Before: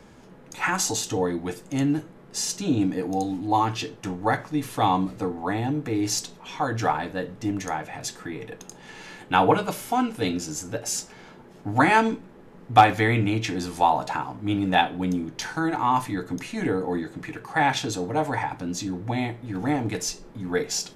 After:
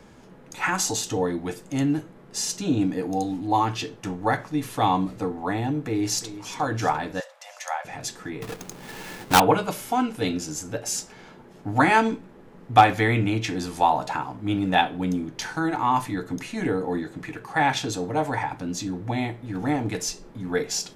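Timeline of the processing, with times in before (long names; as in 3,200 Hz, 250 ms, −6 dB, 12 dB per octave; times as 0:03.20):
0:05.83–0:06.51: delay throw 350 ms, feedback 55%, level −13.5 dB
0:07.20–0:07.85: linear-phase brick-wall high-pass 500 Hz
0:08.42–0:09.40: each half-wave held at its own peak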